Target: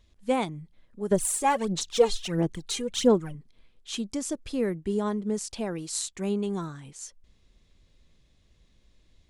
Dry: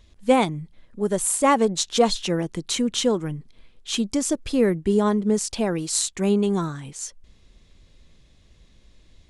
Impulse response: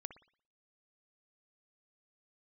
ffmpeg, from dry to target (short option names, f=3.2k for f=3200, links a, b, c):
-filter_complex "[0:a]asettb=1/sr,asplit=3[a][b][c];[a]atrim=end=1.114[d];[b]atrim=start=1.11:end=3.35,asetpts=PTS-STARTPTS,afade=t=in:d=0.004:c=qsin,afade=t=out:st=2.236:d=0.004:c=qsin,aphaser=in_gain=1:out_gain=1:delay=2.5:decay=0.7:speed=1.5:type=sinusoidal[e];[c]atrim=start=3.346[f];[d][e]acrossfade=d=0.004:c1=hsin:c2=qsin[g];[g][f]acrossfade=d=0.004:c1=qsin:c2=hsin,volume=-8dB"